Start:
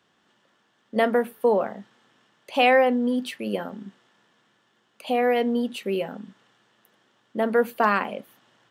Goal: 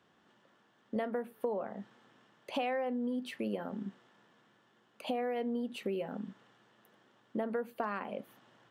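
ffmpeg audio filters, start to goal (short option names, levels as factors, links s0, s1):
-af "highshelf=f=2100:g=-8,acompressor=threshold=0.0224:ratio=6"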